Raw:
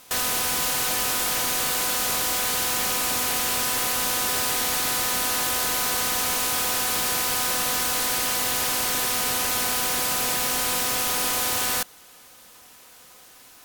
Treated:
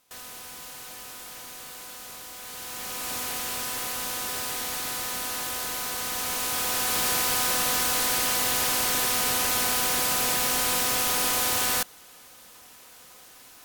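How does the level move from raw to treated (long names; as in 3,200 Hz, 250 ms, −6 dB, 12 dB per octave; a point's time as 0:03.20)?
0:02.35 −17 dB
0:03.14 −7 dB
0:05.96 −7 dB
0:07.06 −0.5 dB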